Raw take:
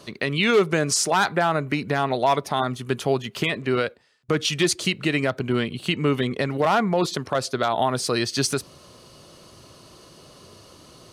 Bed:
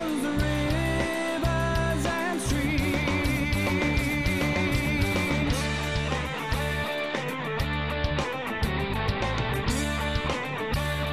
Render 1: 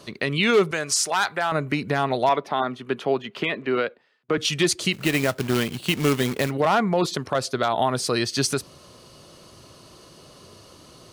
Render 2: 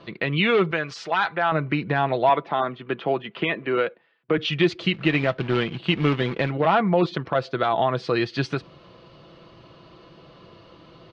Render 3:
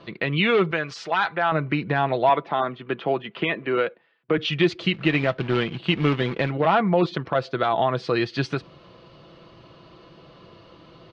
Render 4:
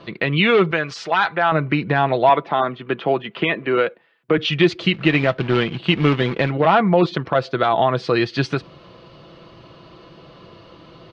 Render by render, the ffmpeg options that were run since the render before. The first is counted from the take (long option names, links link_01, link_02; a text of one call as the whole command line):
ffmpeg -i in.wav -filter_complex "[0:a]asettb=1/sr,asplit=3[link_01][link_02][link_03];[link_01]atrim=end=0.714[link_04];[link_02]atrim=start=0.71:end=1.52,asetpts=PTS-STARTPTS,afade=type=in:duration=0.004:curve=qsin,afade=type=out:start_time=0.806:duration=0.004:curve=qsin,equalizer=frequency=200:width=0.47:gain=-12.5[link_05];[link_03]atrim=start=1.516[link_06];[link_04][link_05]acrossfade=duration=0.004:curve1=hsin:curve2=qsin[link_07];[link_07][link_06]acrossfade=duration=0.004:curve1=qsin:curve2=hsin,asettb=1/sr,asplit=3[link_08][link_09][link_10];[link_08]atrim=end=2.294[link_11];[link_09]atrim=start=2.29:end=4.38,asetpts=PTS-STARTPTS,afade=type=in:duration=0.004:curve=qsin,afade=type=out:start_time=2.086:duration=0.004:curve=qsin,acrossover=split=180 3900:gain=0.141 1 0.141[link_12][link_13][link_14];[link_12][link_13][link_14]amix=inputs=3:normalize=0[link_15];[link_10]atrim=start=4.376[link_16];[link_11][link_15]acrossfade=duration=0.004:curve1=hsin:curve2=qsin[link_17];[link_17][link_16]acrossfade=duration=0.004:curve1=qsin:curve2=hsin,asplit=3[link_18][link_19][link_20];[link_18]afade=type=out:start_time=4.92:duration=0.02[link_21];[link_19]acrusher=bits=2:mode=log:mix=0:aa=0.000001,afade=type=in:start_time=4.92:duration=0.02,afade=type=out:start_time=6.49:duration=0.02[link_22];[link_20]afade=type=in:start_time=6.49:duration=0.02[link_23];[link_21][link_22][link_23]amix=inputs=3:normalize=0" out.wav
ffmpeg -i in.wav -af "lowpass=frequency=3400:width=0.5412,lowpass=frequency=3400:width=1.3066,aecho=1:1:6:0.4" out.wav
ffmpeg -i in.wav -af anull out.wav
ffmpeg -i in.wav -af "volume=4.5dB" out.wav